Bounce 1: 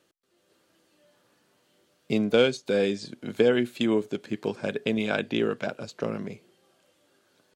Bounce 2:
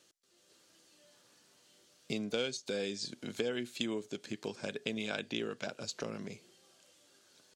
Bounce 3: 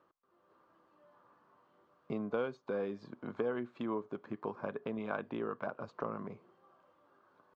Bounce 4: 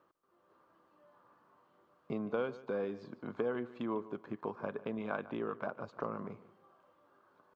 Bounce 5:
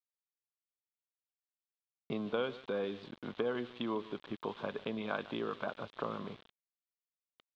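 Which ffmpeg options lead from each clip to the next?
-af "acompressor=threshold=0.0141:ratio=2,equalizer=f=6200:t=o:w=1.9:g=12.5,volume=0.631"
-af "lowpass=f=1100:t=q:w=4.9,volume=0.891"
-af "aecho=1:1:148|296|444:0.141|0.0396|0.0111"
-af "aeval=exprs='val(0)*gte(abs(val(0)),0.00237)':c=same,lowpass=f=3500:t=q:w=4.4"

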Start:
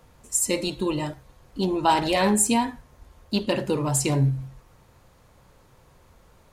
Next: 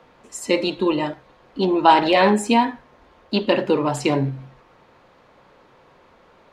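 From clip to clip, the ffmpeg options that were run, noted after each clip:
-filter_complex "[0:a]acrossover=split=200 4300:gain=0.126 1 0.0708[s0][s1][s2];[s0][s1][s2]amix=inputs=3:normalize=0,volume=2.24"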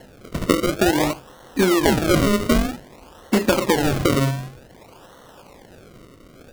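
-af "acompressor=threshold=0.0891:ratio=12,acrusher=samples=36:mix=1:aa=0.000001:lfo=1:lforange=36:lforate=0.53,volume=2.37"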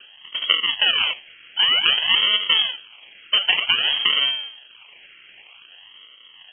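-af "lowpass=f=2800:t=q:w=0.5098,lowpass=f=2800:t=q:w=0.6013,lowpass=f=2800:t=q:w=0.9,lowpass=f=2800:t=q:w=2.563,afreqshift=-3300,volume=0.891"

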